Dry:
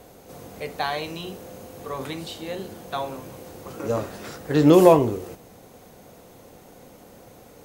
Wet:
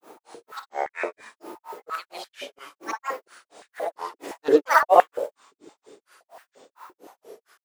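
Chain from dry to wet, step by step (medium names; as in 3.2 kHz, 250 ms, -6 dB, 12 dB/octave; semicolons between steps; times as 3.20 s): short-time spectra conjugated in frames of 239 ms; granulator 199 ms, grains 4.3 per s, pitch spread up and down by 12 st; step-sequenced high-pass 5.8 Hz 350–1700 Hz; trim +3 dB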